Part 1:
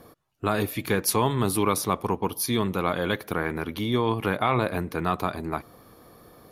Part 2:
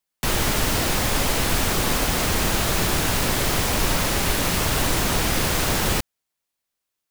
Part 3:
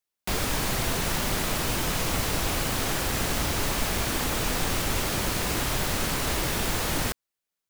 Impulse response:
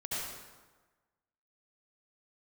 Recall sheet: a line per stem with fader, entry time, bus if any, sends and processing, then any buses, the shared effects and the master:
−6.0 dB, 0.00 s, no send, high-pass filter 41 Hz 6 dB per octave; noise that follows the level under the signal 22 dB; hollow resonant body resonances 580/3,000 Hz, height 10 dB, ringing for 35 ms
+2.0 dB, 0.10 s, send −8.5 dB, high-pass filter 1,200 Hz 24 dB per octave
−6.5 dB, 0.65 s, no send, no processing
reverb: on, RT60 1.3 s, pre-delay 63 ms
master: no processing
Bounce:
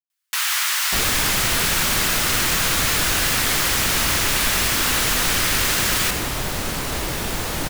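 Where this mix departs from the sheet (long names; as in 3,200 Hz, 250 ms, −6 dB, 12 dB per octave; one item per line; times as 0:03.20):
stem 1: muted
stem 3 −6.5 dB → +2.0 dB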